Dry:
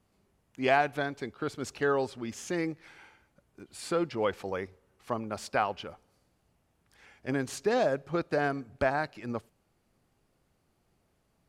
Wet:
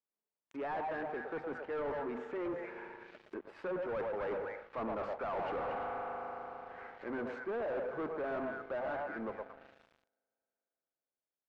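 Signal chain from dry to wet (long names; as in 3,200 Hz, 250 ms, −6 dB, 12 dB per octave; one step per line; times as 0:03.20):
source passing by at 0:04.86, 24 m/s, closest 6.8 metres
low-shelf EQ 180 Hz −8.5 dB
notch filter 740 Hz, Q 13
spring reverb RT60 3.8 s, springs 37 ms, chirp 75 ms, DRR 18.5 dB
reversed playback
downward compressor 8 to 1, threshold −53 dBFS, peak gain reduction 24 dB
reversed playback
three-way crossover with the lows and the highs turned down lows −12 dB, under 220 Hz, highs −15 dB, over 2,500 Hz
mains-hum notches 50/100/150/200/250 Hz
echo through a band-pass that steps 114 ms, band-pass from 730 Hz, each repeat 1.4 octaves, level −2 dB
leveller curve on the samples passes 5
treble cut that deepens with the level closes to 1,600 Hz, closed at −52.5 dBFS
level +8.5 dB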